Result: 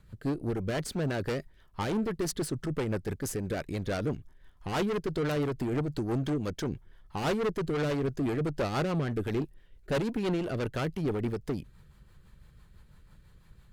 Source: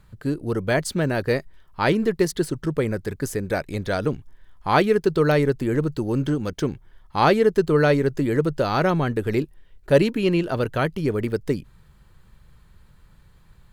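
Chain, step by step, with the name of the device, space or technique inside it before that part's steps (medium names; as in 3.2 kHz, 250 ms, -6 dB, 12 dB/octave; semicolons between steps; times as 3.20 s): overdriven rotary cabinet (valve stage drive 25 dB, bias 0.4; rotary cabinet horn 6 Hz)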